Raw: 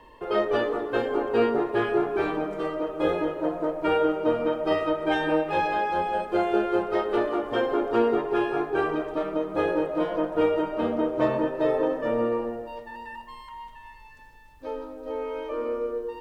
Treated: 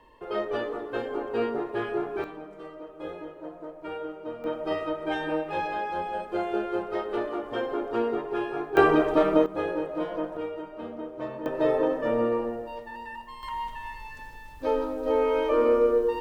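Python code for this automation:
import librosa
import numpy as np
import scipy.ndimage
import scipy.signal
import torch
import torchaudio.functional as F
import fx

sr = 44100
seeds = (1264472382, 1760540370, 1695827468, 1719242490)

y = fx.gain(x, sr, db=fx.steps((0.0, -5.5), (2.24, -13.0), (4.44, -5.0), (8.77, 7.0), (9.46, -4.5), (10.37, -11.5), (11.46, 0.0), (13.43, 8.0)))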